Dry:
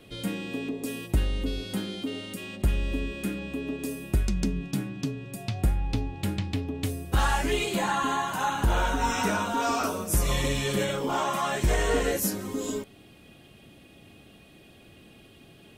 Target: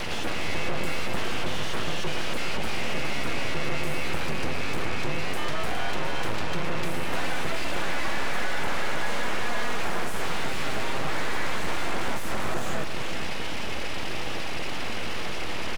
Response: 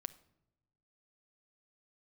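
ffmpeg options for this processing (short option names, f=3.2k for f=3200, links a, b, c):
-filter_complex "[0:a]asplit=2[a][b];[b]highpass=f=720:p=1,volume=35dB,asoftclip=type=tanh:threshold=-15dB[c];[a][c]amix=inputs=2:normalize=0,lowpass=f=6.2k:p=1,volume=-6dB,afreqshift=-92,acrossover=split=160|1100|2300[d][e][f][g];[d]acompressor=threshold=-38dB:ratio=4[h];[e]acompressor=threshold=-33dB:ratio=4[i];[f]acompressor=threshold=-39dB:ratio=4[j];[g]acompressor=threshold=-51dB:ratio=4[k];[h][i][j][k]amix=inputs=4:normalize=0,aeval=exprs='abs(val(0))':c=same,aecho=1:1:412:0.398,asplit=2[l][m];[1:a]atrim=start_sample=2205,asetrate=22050,aresample=44100[n];[m][n]afir=irnorm=-1:irlink=0,volume=-4.5dB[o];[l][o]amix=inputs=2:normalize=0"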